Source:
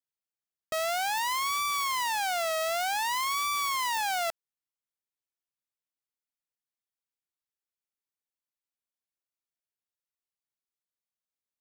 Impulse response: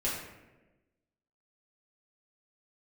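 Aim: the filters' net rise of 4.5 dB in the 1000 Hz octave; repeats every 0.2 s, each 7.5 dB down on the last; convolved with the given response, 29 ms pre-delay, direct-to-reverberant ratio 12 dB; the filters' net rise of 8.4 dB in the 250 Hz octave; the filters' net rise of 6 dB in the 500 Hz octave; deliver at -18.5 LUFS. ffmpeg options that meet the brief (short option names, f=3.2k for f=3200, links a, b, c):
-filter_complex "[0:a]equalizer=f=250:t=o:g=8.5,equalizer=f=500:t=o:g=6.5,equalizer=f=1k:t=o:g=3,aecho=1:1:200|400|600|800|1000:0.422|0.177|0.0744|0.0312|0.0131,asplit=2[a][b];[1:a]atrim=start_sample=2205,adelay=29[c];[b][c]afir=irnorm=-1:irlink=0,volume=-18.5dB[d];[a][d]amix=inputs=2:normalize=0,volume=6dB"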